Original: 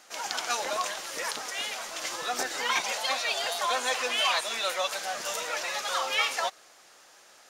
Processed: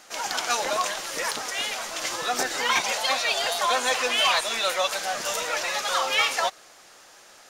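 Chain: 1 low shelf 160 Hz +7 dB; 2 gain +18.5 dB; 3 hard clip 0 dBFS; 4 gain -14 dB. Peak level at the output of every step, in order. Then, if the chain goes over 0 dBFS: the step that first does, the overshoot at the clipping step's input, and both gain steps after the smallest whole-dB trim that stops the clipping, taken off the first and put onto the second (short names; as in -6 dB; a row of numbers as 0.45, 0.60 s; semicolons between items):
-10.5, +8.0, 0.0, -14.0 dBFS; step 2, 8.0 dB; step 2 +10.5 dB, step 4 -6 dB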